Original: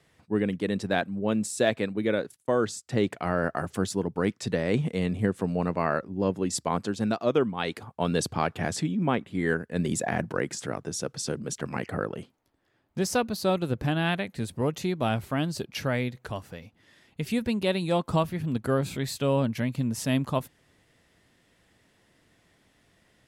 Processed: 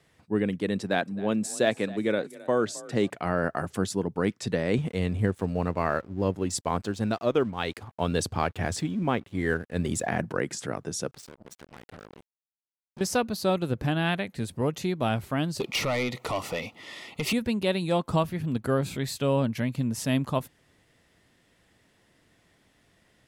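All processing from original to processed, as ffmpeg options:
-filter_complex "[0:a]asettb=1/sr,asplit=3[s0][s1][s2];[s0]atrim=end=0.814[s3];[s1]atrim=start=0.81:end=3.1,asetpts=PTS-STARTPTS,afade=t=in:d=0.004:c=qsin,afade=t=out:st=2.286:d=0.004:c=qsin,highpass=120,asplit=4[s4][s5][s6][s7];[s5]adelay=265,afreqshift=33,volume=0.106[s8];[s6]adelay=530,afreqshift=66,volume=0.0394[s9];[s7]adelay=795,afreqshift=99,volume=0.0145[s10];[s4][s8][s9][s10]amix=inputs=4:normalize=0,atrim=end_sample=100989[s11];[s2]atrim=start=3.096[s12];[s3][s11]acrossfade=d=0.004:c1=hsin:c2=qsin[s13];[s13][s12]acrossfade=d=0.004:c1=qsin:c2=hsin,asettb=1/sr,asplit=3[s14][s15][s16];[s14]atrim=end=4.784[s17];[s15]atrim=start=4.78:end=10.07,asetpts=PTS-STARTPTS,afade=t=in:d=0.004:c=qsin,afade=t=out:st=5.286:d=0.004:c=qsin,lowshelf=f=110:t=q:w=1.5:g=6.5,aeval=exprs='sgn(val(0))*max(abs(val(0))-0.00237,0)':c=same[s18];[s16]atrim=start=10.066[s19];[s17][s18]acrossfade=d=0.004:c1=hsin:c2=qsin[s20];[s20][s19]acrossfade=d=0.004:c1=qsin:c2=hsin,asettb=1/sr,asplit=3[s21][s22][s23];[s21]atrim=end=11.114[s24];[s22]atrim=start=11.11:end=13.01,asetpts=PTS-STARTPTS,afade=t=in:d=0.004:c=qsin,afade=t=out:st=1.896:d=0.004:c=qsin,acompressor=threshold=0.00316:ratio=2.5:attack=3.2:release=140:knee=1:detection=peak,acrusher=bits=6:mix=0:aa=0.5[s25];[s23]atrim=start=13.006[s26];[s24][s25]acrossfade=d=0.004:c1=hsin:c2=qsin[s27];[s27][s26]acrossfade=d=0.004:c1=qsin:c2=hsin,asettb=1/sr,asplit=3[s28][s29][s30];[s28]atrim=end=15.604[s31];[s29]atrim=start=15.6:end=17.33,asetpts=PTS-STARTPTS,afade=t=in:d=0.004:c=qsin,afade=t=out:st=1.726:d=0.004:c=qsin,acompressor=threshold=0.02:ratio=3:attack=3.2:release=140:knee=1:detection=peak,asplit=2[s32][s33];[s33]highpass=f=720:p=1,volume=20,asoftclip=type=tanh:threshold=0.141[s34];[s32][s34]amix=inputs=2:normalize=0,lowpass=f=4800:p=1,volume=0.501,asuperstop=centerf=1600:order=4:qfactor=3.5[s35];[s30]atrim=start=17.326[s36];[s31][s35]acrossfade=d=0.004:c1=hsin:c2=qsin[s37];[s37][s36]acrossfade=d=0.004:c1=qsin:c2=hsin"

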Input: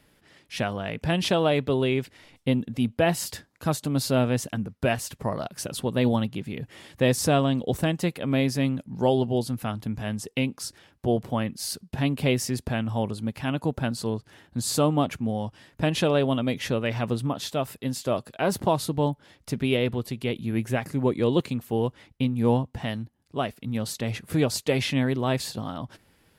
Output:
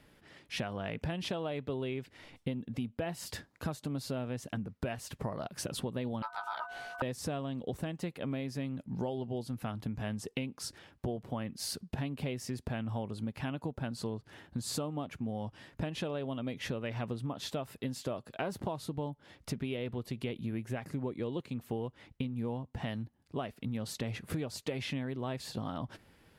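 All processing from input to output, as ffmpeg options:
-filter_complex "[0:a]asettb=1/sr,asplit=3[s0][s1][s2];[s0]atrim=end=6.224[s3];[s1]atrim=start=6.22:end=7.02,asetpts=PTS-STARTPTS,afade=t=in:d=0.004:c=qsin,afade=t=out:st=0.796:d=0.004:c=qsin,aeval=exprs='val(0)+0.00794*sin(2*PI*400*n/s)':c=same,aeval=exprs='val(0)*sin(2*PI*1100*n/s)':c=same,asplit=2[s4][s5];[s5]adelay=16,volume=0.562[s6];[s4][s6]amix=inputs=2:normalize=0,atrim=end_sample=35280[s7];[s2]atrim=start=7.016[s8];[s3][s7]acrossfade=d=0.004:c1=hsin:c2=qsin[s9];[s9][s8]acrossfade=d=0.004:c1=qsin:c2=hsin,highshelf=f=5000:g=-7,acompressor=threshold=0.0224:ratio=10"

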